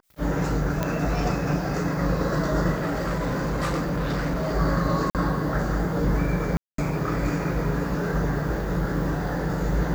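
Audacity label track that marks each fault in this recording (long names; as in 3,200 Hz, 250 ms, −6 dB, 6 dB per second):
0.830000	0.830000	click −11 dBFS
2.750000	4.550000	clipping −22 dBFS
5.100000	5.150000	drop-out 48 ms
6.570000	6.780000	drop-out 213 ms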